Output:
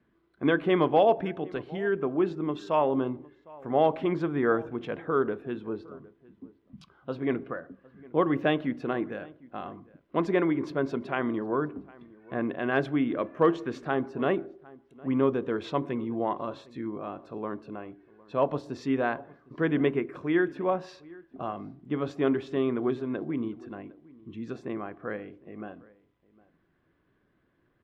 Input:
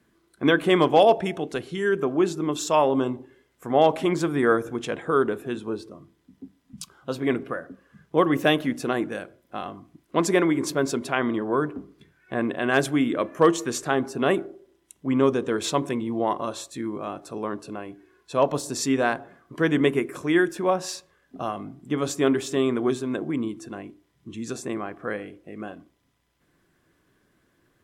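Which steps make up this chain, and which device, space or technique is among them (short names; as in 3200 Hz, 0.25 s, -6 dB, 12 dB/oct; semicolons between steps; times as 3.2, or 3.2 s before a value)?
shout across a valley (air absorption 330 m; outdoor echo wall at 130 m, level -22 dB); gain -3.5 dB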